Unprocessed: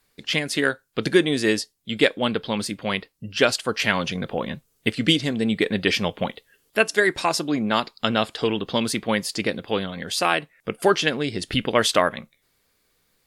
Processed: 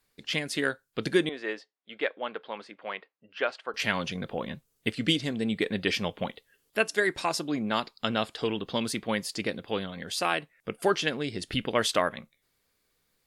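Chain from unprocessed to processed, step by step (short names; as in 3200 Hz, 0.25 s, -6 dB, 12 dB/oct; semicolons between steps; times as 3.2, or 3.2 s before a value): 1.29–3.74 BPF 550–2000 Hz; gain -6.5 dB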